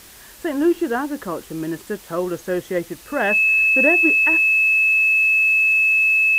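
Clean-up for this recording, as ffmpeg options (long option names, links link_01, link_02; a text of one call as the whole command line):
ffmpeg -i in.wav -af "adeclick=threshold=4,bandreject=frequency=2600:width=30,afwtdn=0.0071" out.wav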